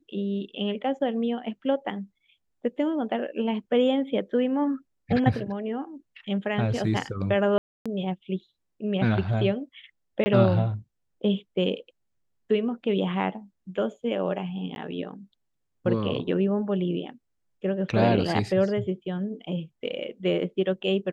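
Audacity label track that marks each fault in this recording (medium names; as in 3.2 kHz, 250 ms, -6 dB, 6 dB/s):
7.580000	7.860000	dropout 276 ms
10.240000	10.260000	dropout 20 ms
14.750000	14.760000	dropout 11 ms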